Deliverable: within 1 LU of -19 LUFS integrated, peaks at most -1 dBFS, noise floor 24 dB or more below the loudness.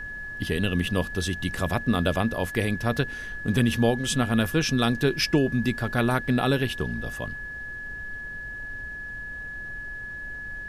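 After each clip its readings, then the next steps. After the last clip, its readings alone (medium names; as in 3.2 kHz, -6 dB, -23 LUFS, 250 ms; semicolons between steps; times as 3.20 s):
steady tone 1.7 kHz; tone level -34 dBFS; noise floor -37 dBFS; noise floor target -51 dBFS; loudness -26.5 LUFS; peak level -9.0 dBFS; loudness target -19.0 LUFS
-> band-stop 1.7 kHz, Q 30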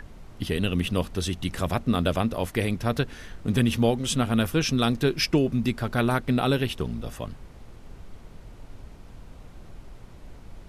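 steady tone not found; noise floor -47 dBFS; noise floor target -50 dBFS
-> noise print and reduce 6 dB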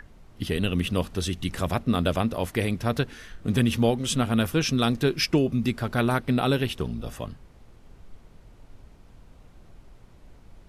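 noise floor -52 dBFS; loudness -26.0 LUFS; peak level -9.5 dBFS; loudness target -19.0 LUFS
-> trim +7 dB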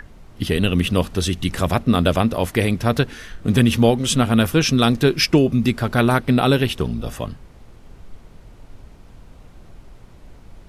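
loudness -19.0 LUFS; peak level -2.5 dBFS; noise floor -45 dBFS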